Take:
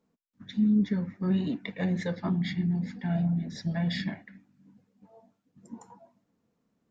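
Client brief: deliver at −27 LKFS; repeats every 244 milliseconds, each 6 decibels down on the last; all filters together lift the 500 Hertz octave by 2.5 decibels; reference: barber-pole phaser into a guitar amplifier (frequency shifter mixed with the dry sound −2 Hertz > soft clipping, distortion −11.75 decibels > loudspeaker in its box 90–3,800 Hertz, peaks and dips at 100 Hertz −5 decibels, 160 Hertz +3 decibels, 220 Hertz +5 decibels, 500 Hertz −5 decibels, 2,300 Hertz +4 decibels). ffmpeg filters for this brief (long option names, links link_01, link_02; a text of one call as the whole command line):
ffmpeg -i in.wav -filter_complex "[0:a]equalizer=frequency=500:width_type=o:gain=6,aecho=1:1:244|488|732|976|1220|1464:0.501|0.251|0.125|0.0626|0.0313|0.0157,asplit=2[link_01][link_02];[link_02]afreqshift=-2[link_03];[link_01][link_03]amix=inputs=2:normalize=1,asoftclip=threshold=-26dB,highpass=90,equalizer=frequency=100:width_type=q:width=4:gain=-5,equalizer=frequency=160:width_type=q:width=4:gain=3,equalizer=frequency=220:width_type=q:width=4:gain=5,equalizer=frequency=500:width_type=q:width=4:gain=-5,equalizer=frequency=2300:width_type=q:width=4:gain=4,lowpass=frequency=3800:width=0.5412,lowpass=frequency=3800:width=1.3066,volume=3.5dB" out.wav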